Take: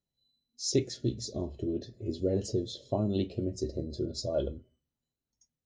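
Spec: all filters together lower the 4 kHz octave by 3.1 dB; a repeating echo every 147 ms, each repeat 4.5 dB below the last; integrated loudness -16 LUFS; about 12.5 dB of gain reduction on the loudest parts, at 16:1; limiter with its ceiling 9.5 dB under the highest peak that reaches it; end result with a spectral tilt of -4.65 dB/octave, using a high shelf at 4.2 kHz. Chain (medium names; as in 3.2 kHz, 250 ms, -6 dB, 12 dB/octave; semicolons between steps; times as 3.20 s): peaking EQ 4 kHz -7.5 dB; treble shelf 4.2 kHz +4 dB; compression 16:1, threshold -33 dBFS; peak limiter -32.5 dBFS; feedback delay 147 ms, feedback 60%, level -4.5 dB; trim +25.5 dB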